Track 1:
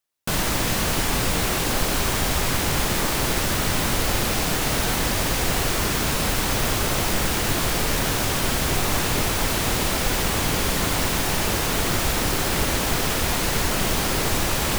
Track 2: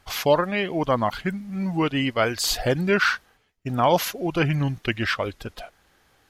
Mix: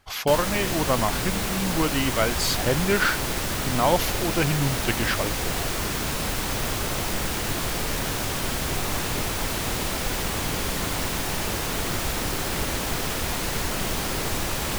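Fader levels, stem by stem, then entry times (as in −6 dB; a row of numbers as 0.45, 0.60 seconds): −4.5, −2.0 decibels; 0.00, 0.00 seconds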